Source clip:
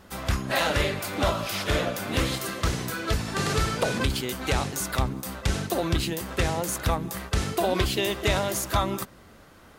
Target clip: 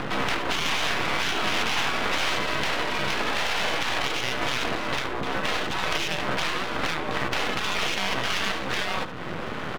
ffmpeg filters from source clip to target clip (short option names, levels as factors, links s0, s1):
-filter_complex "[0:a]afftfilt=real='re*lt(hypot(re,im),0.0708)':imag='im*lt(hypot(re,im),0.0708)':win_size=1024:overlap=0.75,asplit=2[s0][s1];[s1]alimiter=level_in=1.06:limit=0.0631:level=0:latency=1,volume=0.944,volume=1.06[s2];[s0][s2]amix=inputs=2:normalize=0,acompressor=mode=upward:threshold=0.0631:ratio=2.5,highpass=f=160:t=q:w=0.5412,highpass=f=160:t=q:w=1.307,lowpass=f=3500:t=q:w=0.5176,lowpass=f=3500:t=q:w=0.7071,lowpass=f=3500:t=q:w=1.932,afreqshift=-59,asplit=2[s3][s4];[s4]aecho=0:1:73:0.237[s5];[s3][s5]amix=inputs=2:normalize=0,aeval=exprs='max(val(0),0)':c=same,volume=2.66"